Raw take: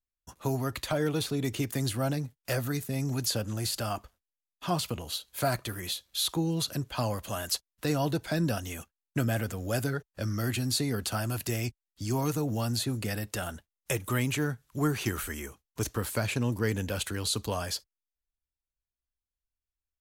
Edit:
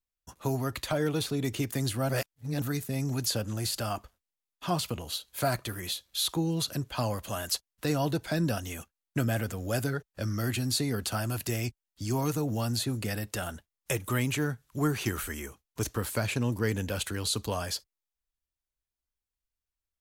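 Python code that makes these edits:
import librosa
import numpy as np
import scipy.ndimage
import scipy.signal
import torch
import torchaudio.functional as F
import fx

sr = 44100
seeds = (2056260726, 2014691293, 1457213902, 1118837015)

y = fx.edit(x, sr, fx.reverse_span(start_s=2.09, length_s=0.53), tone=tone)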